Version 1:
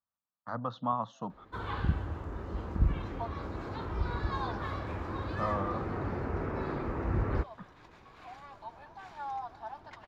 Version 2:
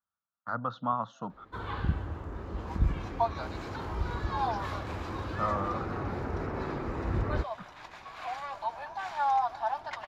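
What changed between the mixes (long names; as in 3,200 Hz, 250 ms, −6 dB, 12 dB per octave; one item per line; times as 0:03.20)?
speech: add parametric band 1,400 Hz +12 dB 0.25 octaves
second sound +11.5 dB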